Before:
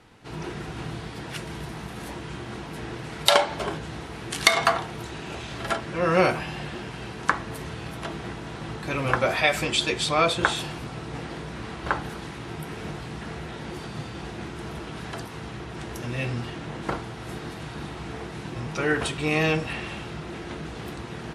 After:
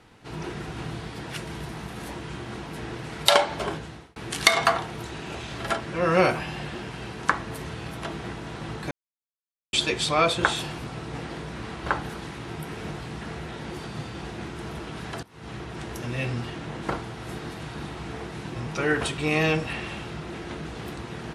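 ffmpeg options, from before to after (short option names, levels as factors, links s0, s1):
-filter_complex "[0:a]asplit=5[s0][s1][s2][s3][s4];[s0]atrim=end=4.16,asetpts=PTS-STARTPTS,afade=t=out:st=3.73:d=0.43[s5];[s1]atrim=start=4.16:end=8.91,asetpts=PTS-STARTPTS,afade=t=in:d=0.004:c=hsin,afade=t=out:st=4.746:d=0.004:c=hsin[s6];[s2]atrim=start=8.91:end=9.73,asetpts=PTS-STARTPTS,volume=0[s7];[s3]atrim=start=9.73:end=15.23,asetpts=PTS-STARTPTS,afade=t=in:d=0.004:c=hsin,afade=t=out:st=5.496:d=0.004:c=hsin:silence=0.125893[s8];[s4]atrim=start=15.23,asetpts=PTS-STARTPTS,afade=t=in:d=0.28:c=qua:silence=0.125893[s9];[s5][s6][s7][s8][s9]concat=n=5:v=0:a=1"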